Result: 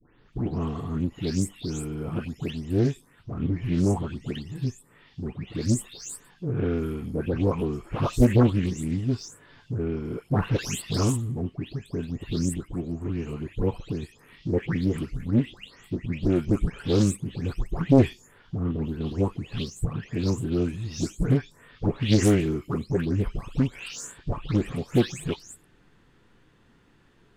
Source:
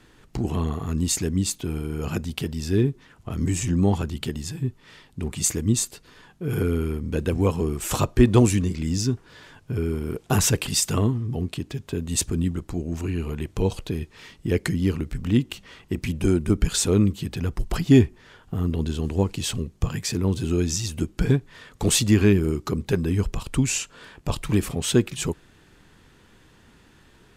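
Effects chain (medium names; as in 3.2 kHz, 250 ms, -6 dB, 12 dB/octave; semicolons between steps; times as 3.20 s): delay that grows with frequency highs late, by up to 326 ms; treble shelf 4.7 kHz -10.5 dB; in parallel at -7 dB: hysteresis with a dead band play -32.5 dBFS; on the sum: loudspeaker Doppler distortion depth 0.6 ms; trim -4.5 dB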